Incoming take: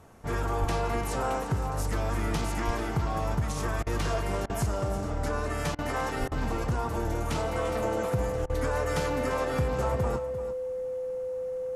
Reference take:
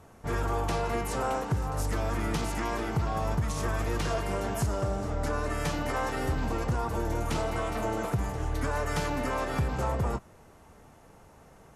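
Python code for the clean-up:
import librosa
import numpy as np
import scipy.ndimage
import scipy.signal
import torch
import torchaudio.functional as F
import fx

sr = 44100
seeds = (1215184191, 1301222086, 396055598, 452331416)

y = fx.notch(x, sr, hz=510.0, q=30.0)
y = fx.fix_deplosive(y, sr, at_s=(0.6, 2.66, 6.19))
y = fx.fix_interpolate(y, sr, at_s=(3.83, 4.46, 5.75, 6.28, 8.46), length_ms=35.0)
y = fx.fix_echo_inverse(y, sr, delay_ms=346, level_db=-12.5)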